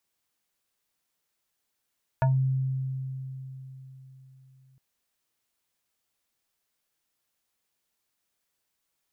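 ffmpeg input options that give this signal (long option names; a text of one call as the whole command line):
ffmpeg -f lavfi -i "aevalsrc='0.119*pow(10,-3*t/3.97)*sin(2*PI*132*t+1.3*pow(10,-3*t/0.19)*sin(2*PI*5.98*132*t))':duration=2.56:sample_rate=44100" out.wav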